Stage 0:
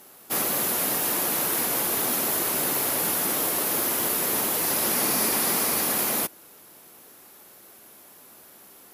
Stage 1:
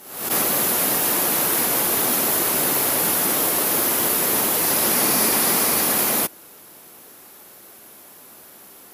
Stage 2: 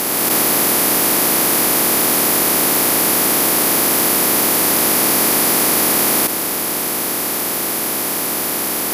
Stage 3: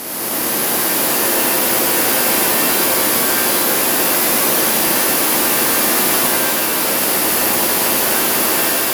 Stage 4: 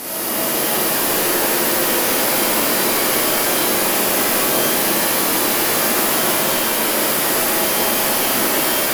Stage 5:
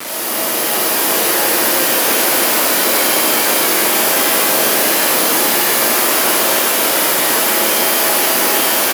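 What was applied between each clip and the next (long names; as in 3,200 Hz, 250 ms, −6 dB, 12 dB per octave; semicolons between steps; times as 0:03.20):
background raised ahead of every attack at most 77 dB per second; level +5 dB
compressor on every frequency bin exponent 0.2; parametric band 310 Hz +3.5 dB 0.36 octaves; level −1.5 dB
automatic gain control; reverb with rising layers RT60 3.3 s, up +7 semitones, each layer −2 dB, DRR −3.5 dB; level −8.5 dB
soft clipping −14.5 dBFS, distortion −12 dB; convolution reverb RT60 1.8 s, pre-delay 4 ms, DRR −3.5 dB; level −2 dB
hold until the input has moved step −22.5 dBFS; high-pass filter 340 Hz 6 dB per octave; single-tap delay 667 ms −3.5 dB; level +2.5 dB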